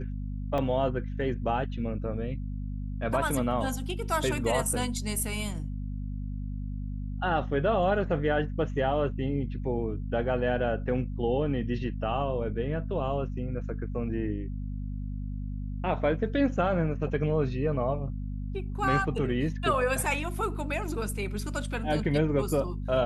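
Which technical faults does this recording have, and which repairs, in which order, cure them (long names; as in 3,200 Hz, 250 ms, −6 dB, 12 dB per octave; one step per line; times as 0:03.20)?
mains hum 50 Hz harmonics 5 −34 dBFS
0:00.58: drop-out 2.9 ms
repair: hum removal 50 Hz, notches 5
repair the gap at 0:00.58, 2.9 ms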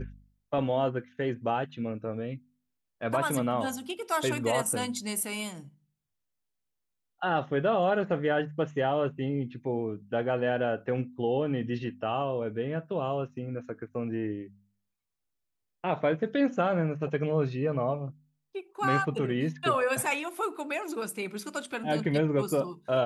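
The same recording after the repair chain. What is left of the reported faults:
none of them is left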